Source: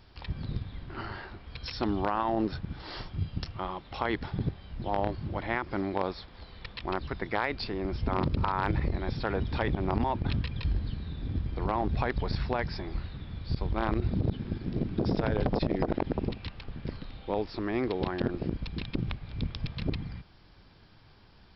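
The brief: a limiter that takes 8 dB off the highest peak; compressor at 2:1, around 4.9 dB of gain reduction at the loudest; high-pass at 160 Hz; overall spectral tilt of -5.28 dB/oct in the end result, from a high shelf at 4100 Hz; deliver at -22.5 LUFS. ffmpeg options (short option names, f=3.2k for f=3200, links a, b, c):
-af "highpass=160,highshelf=f=4.1k:g=-7.5,acompressor=threshold=-34dB:ratio=2,volume=17.5dB,alimiter=limit=-8.5dB:level=0:latency=1"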